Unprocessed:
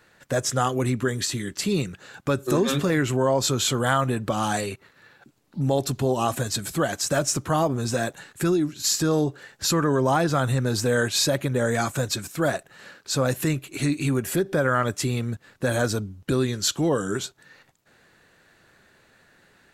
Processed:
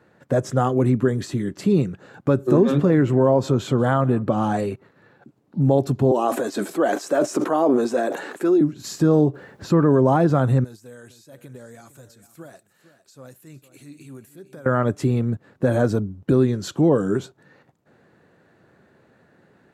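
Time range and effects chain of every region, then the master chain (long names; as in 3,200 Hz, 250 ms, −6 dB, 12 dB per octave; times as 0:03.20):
0:02.49–0:04.59: high-shelf EQ 6,200 Hz −6.5 dB + single-tap delay 185 ms −23.5 dB
0:06.11–0:08.61: high-pass filter 290 Hz 24 dB per octave + level that may fall only so fast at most 30 dB per second
0:09.33–0:09.84: mu-law and A-law mismatch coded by mu + high-shelf EQ 5,000 Hz −10.5 dB + background noise pink −58 dBFS
0:10.64–0:14.66: first-order pre-emphasis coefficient 0.9 + downward compressor 20 to 1, threshold −38 dBFS + single-tap delay 456 ms −15 dB
whole clip: high-pass filter 110 Hz; tilt shelving filter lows +10 dB, about 1,400 Hz; level −2.5 dB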